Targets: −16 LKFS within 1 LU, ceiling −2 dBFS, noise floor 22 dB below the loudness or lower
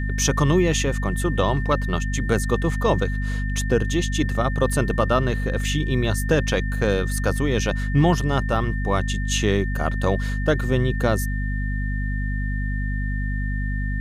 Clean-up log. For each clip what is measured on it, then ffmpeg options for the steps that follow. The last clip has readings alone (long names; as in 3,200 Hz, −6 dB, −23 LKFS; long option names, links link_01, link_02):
mains hum 50 Hz; hum harmonics up to 250 Hz; level of the hum −22 dBFS; interfering tone 1,800 Hz; level of the tone −33 dBFS; integrated loudness −23.0 LKFS; sample peak −6.5 dBFS; target loudness −16.0 LKFS
→ -af "bandreject=frequency=50:width_type=h:width=6,bandreject=frequency=100:width_type=h:width=6,bandreject=frequency=150:width_type=h:width=6,bandreject=frequency=200:width_type=h:width=6,bandreject=frequency=250:width_type=h:width=6"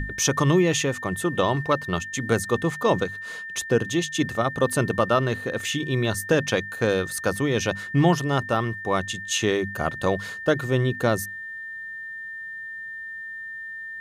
mains hum none found; interfering tone 1,800 Hz; level of the tone −33 dBFS
→ -af "bandreject=frequency=1800:width=30"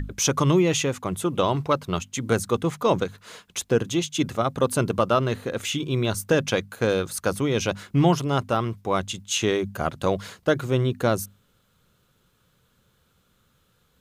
interfering tone none found; integrated loudness −24.5 LKFS; sample peak −7.5 dBFS; target loudness −16.0 LKFS
→ -af "volume=8.5dB,alimiter=limit=-2dB:level=0:latency=1"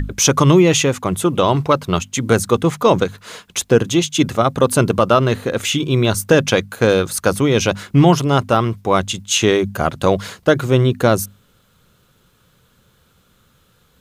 integrated loudness −16.0 LKFS; sample peak −2.0 dBFS; background noise floor −57 dBFS